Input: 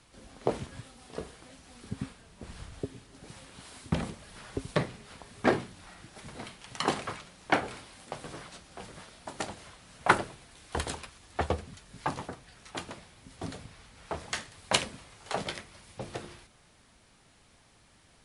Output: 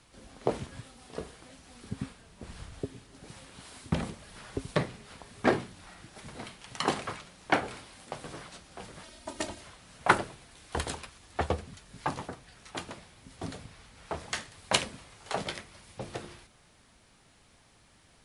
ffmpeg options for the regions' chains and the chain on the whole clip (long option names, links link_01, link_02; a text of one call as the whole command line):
ffmpeg -i in.wav -filter_complex "[0:a]asettb=1/sr,asplit=3[link_01][link_02][link_03];[link_01]atrim=end=9.034[link_04];[link_02]atrim=start=9.03:end=9.61,asetpts=PTS-STARTPTS,afade=type=in:duration=0.004:curve=qsin,afade=type=out:start_time=0.576:duration=0.004:curve=qsin,equalizer=frequency=1200:width=0.81:gain=-4,aecho=1:1:3.2:0.88,atrim=end_sample=25578[link_05];[link_03]atrim=start=9.606[link_06];[link_04][link_05]acrossfade=duration=0.004:curve1=hsin:curve2=qsin[link_07];[link_07][link_06]acrossfade=duration=0.004:curve1=qsin:curve2=hsin" out.wav